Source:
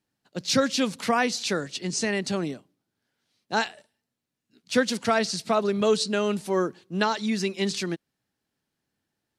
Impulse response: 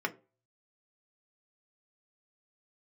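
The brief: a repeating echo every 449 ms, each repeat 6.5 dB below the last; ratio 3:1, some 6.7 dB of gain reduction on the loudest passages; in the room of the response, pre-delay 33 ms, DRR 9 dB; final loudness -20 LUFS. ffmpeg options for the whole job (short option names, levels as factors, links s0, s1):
-filter_complex "[0:a]acompressor=threshold=0.0562:ratio=3,aecho=1:1:449|898|1347|1796|2245|2694:0.473|0.222|0.105|0.0491|0.0231|0.0109,asplit=2[s0][s1];[1:a]atrim=start_sample=2205,adelay=33[s2];[s1][s2]afir=irnorm=-1:irlink=0,volume=0.168[s3];[s0][s3]amix=inputs=2:normalize=0,volume=2.82"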